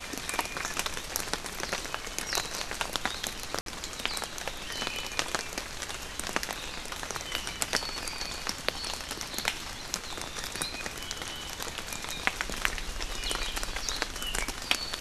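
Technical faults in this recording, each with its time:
0:03.61–0:03.66: drop-out 52 ms

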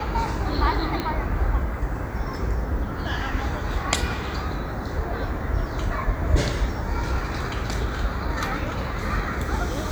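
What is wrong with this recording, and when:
0:01.00: click −13 dBFS

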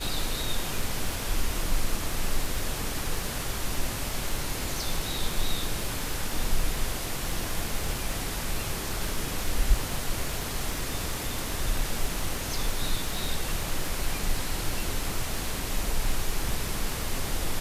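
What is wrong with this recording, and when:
surface crackle 35 per second −32 dBFS

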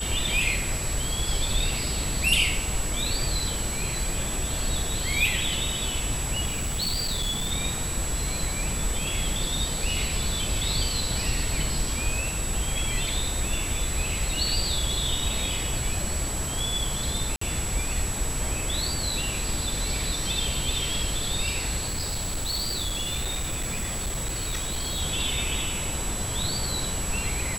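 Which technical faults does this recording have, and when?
whistle 7,800 Hz −32 dBFS
0:06.46–0:07.52: clipping −23.5 dBFS
0:17.36–0:17.41: drop-out 54 ms
0:21.86–0:25.02: clipping −25 dBFS

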